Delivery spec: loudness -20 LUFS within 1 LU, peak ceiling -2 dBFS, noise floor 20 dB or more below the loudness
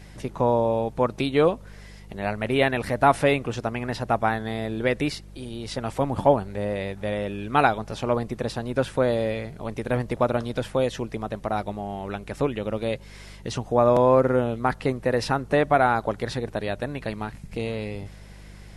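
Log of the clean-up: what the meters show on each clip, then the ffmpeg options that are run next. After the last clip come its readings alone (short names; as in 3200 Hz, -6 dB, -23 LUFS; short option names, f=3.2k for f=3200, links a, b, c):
hum 50 Hz; harmonics up to 200 Hz; hum level -43 dBFS; loudness -25.0 LUFS; peak -4.5 dBFS; loudness target -20.0 LUFS
-> -af "bandreject=f=50:t=h:w=4,bandreject=f=100:t=h:w=4,bandreject=f=150:t=h:w=4,bandreject=f=200:t=h:w=4"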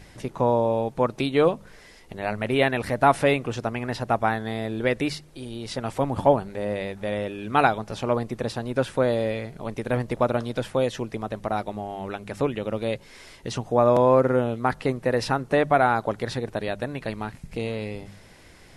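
hum none; loudness -25.0 LUFS; peak -4.5 dBFS; loudness target -20.0 LUFS
-> -af "volume=5dB,alimiter=limit=-2dB:level=0:latency=1"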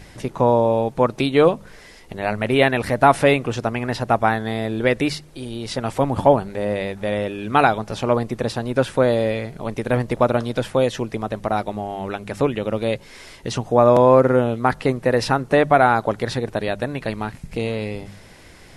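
loudness -20.0 LUFS; peak -2.0 dBFS; noise floor -45 dBFS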